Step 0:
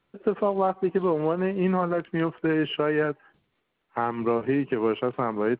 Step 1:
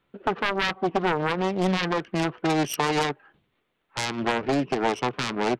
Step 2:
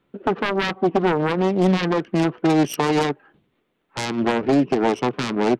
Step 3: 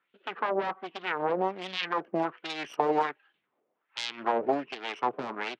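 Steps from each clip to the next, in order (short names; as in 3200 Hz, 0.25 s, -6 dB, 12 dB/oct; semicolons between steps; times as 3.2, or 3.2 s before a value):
self-modulated delay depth 0.84 ms; gain +1.5 dB
bell 270 Hz +8 dB 2.3 oct
wah 1.3 Hz 590–3500 Hz, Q 2.1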